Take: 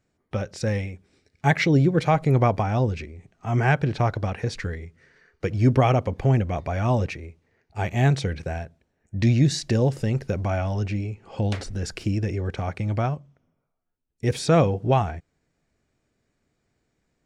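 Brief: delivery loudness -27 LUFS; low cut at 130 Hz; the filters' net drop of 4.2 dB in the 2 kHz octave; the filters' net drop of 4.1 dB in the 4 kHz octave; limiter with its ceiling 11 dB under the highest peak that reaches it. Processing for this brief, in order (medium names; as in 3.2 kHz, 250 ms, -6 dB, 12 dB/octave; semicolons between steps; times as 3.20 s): high-pass 130 Hz; peaking EQ 2 kHz -4.5 dB; peaking EQ 4 kHz -4 dB; trim +3 dB; peak limiter -14 dBFS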